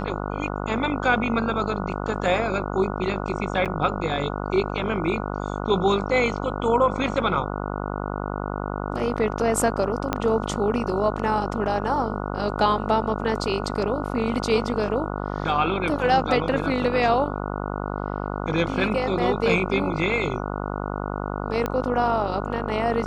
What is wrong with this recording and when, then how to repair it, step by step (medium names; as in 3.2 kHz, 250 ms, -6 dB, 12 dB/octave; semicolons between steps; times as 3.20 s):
buzz 50 Hz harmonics 29 -29 dBFS
3.65–3.66 s: dropout 7.4 ms
10.13 s: pop -8 dBFS
21.66 s: pop -12 dBFS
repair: de-click; de-hum 50 Hz, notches 29; interpolate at 3.65 s, 7.4 ms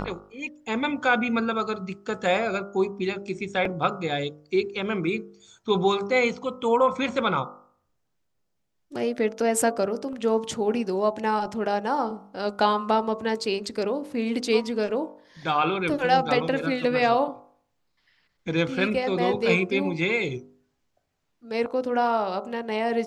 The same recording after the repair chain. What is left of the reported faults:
10.13 s: pop